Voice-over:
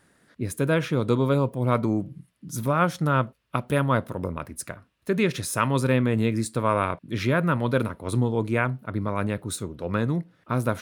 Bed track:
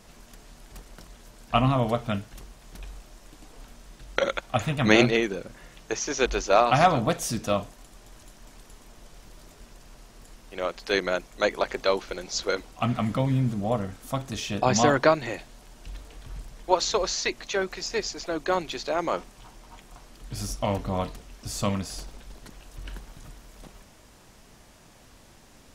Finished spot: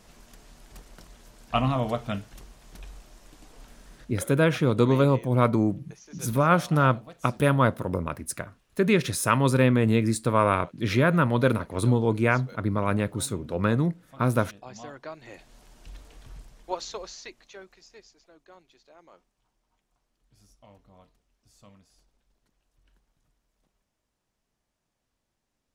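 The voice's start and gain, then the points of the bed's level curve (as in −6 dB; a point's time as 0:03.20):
3.70 s, +1.5 dB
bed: 0:03.96 −2.5 dB
0:04.36 −21.5 dB
0:15.05 −21.5 dB
0:15.55 −4.5 dB
0:16.25 −4.5 dB
0:18.42 −27.5 dB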